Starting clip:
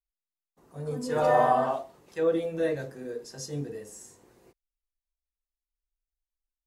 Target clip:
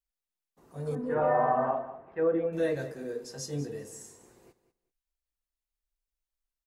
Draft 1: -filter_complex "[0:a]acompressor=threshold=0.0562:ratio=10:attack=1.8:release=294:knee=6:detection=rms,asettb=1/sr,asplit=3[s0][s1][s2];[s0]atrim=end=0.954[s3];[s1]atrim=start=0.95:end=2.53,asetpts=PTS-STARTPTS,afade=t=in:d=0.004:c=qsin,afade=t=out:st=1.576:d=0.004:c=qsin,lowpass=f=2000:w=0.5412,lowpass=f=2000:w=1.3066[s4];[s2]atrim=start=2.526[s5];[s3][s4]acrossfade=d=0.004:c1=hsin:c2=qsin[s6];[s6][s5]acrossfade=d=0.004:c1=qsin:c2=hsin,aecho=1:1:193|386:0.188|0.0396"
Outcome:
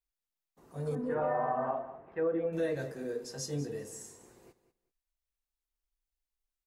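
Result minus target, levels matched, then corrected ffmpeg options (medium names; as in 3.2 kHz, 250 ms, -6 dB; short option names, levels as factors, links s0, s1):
compression: peak gain reduction +6.5 dB
-filter_complex "[0:a]acompressor=threshold=0.133:ratio=10:attack=1.8:release=294:knee=6:detection=rms,asettb=1/sr,asplit=3[s0][s1][s2];[s0]atrim=end=0.954[s3];[s1]atrim=start=0.95:end=2.53,asetpts=PTS-STARTPTS,afade=t=in:d=0.004:c=qsin,afade=t=out:st=1.576:d=0.004:c=qsin,lowpass=f=2000:w=0.5412,lowpass=f=2000:w=1.3066[s4];[s2]atrim=start=2.526[s5];[s3][s4]acrossfade=d=0.004:c1=hsin:c2=qsin[s6];[s6][s5]acrossfade=d=0.004:c1=qsin:c2=hsin,aecho=1:1:193|386:0.188|0.0396"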